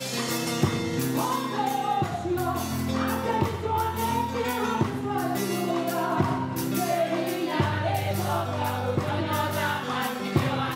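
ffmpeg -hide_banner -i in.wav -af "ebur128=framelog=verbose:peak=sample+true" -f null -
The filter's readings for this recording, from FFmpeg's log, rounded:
Integrated loudness:
  I:         -26.9 LUFS
  Threshold: -36.9 LUFS
Loudness range:
  LRA:         0.5 LU
  Threshold: -46.9 LUFS
  LRA low:   -27.1 LUFS
  LRA high:  -26.6 LUFS
Sample peak:
  Peak:      -11.7 dBFS
True peak:
  Peak:      -11.7 dBFS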